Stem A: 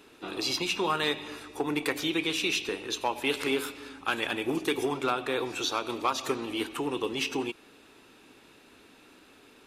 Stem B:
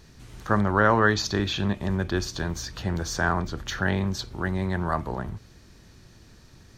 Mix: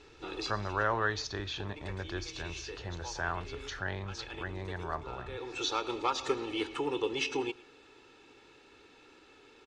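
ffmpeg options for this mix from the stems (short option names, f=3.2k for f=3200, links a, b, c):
-filter_complex "[0:a]aecho=1:1:2.3:0.53,volume=-3.5dB,asplit=2[a][b];[b]volume=-21.5dB[c];[1:a]equalizer=f=200:t=o:w=1.1:g=-11.5,volume=-9dB,asplit=2[d][e];[e]apad=whole_len=426182[f];[a][f]sidechaincompress=threshold=-52dB:ratio=12:attack=30:release=390[g];[c]aecho=0:1:112:1[h];[g][d][h]amix=inputs=3:normalize=0,lowpass=f=6.9k:w=0.5412,lowpass=f=6.9k:w=1.3066"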